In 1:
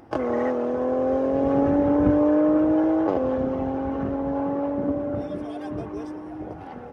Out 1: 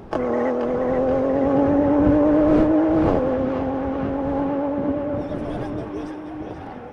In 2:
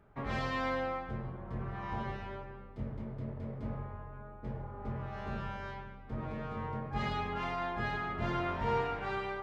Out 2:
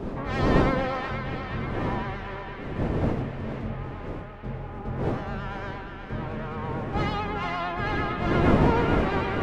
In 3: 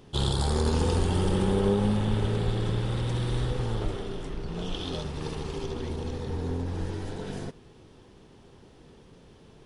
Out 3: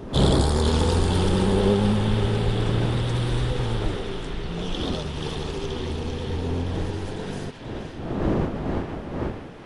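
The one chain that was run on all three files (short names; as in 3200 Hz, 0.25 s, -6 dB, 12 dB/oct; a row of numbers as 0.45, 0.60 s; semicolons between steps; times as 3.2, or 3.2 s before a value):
wind noise 380 Hz -35 dBFS; vibrato 8.9 Hz 49 cents; narrowing echo 0.48 s, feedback 73%, band-pass 2400 Hz, level -4 dB; normalise peaks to -6 dBFS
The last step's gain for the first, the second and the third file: +2.5, +6.0, +4.0 dB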